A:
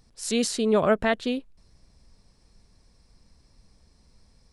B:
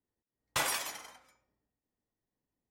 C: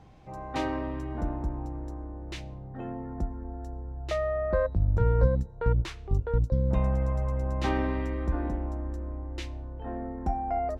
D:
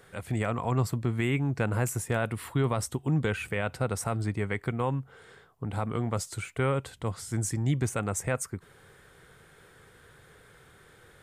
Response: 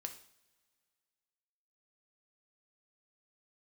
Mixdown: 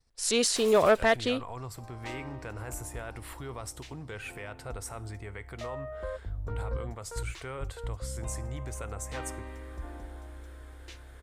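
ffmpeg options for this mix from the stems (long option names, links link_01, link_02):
-filter_complex "[0:a]agate=range=-33dB:threshold=-50dB:ratio=3:detection=peak,volume=3dB[link_01];[1:a]alimiter=level_in=3.5dB:limit=-24dB:level=0:latency=1,volume=-3.5dB,aeval=exprs='val(0)*sin(2*PI*1700*n/s)':channel_layout=same,volume=-5.5dB,asplit=2[link_02][link_03];[link_03]volume=-3dB[link_04];[2:a]highshelf=frequency=4600:gain=8,adelay=1500,volume=-10dB[link_05];[3:a]alimiter=level_in=2.5dB:limit=-24dB:level=0:latency=1:release=167,volume=-2.5dB,adelay=850,volume=-4.5dB,asplit=2[link_06][link_07];[link_07]volume=-3.5dB[link_08];[4:a]atrim=start_sample=2205[link_09];[link_04][link_08]amix=inputs=2:normalize=0[link_10];[link_10][link_09]afir=irnorm=-1:irlink=0[link_11];[link_01][link_02][link_05][link_06][link_11]amix=inputs=5:normalize=0,equalizer=frequency=190:width_type=o:width=1.3:gain=-10.5,asoftclip=type=tanh:threshold=-12.5dB"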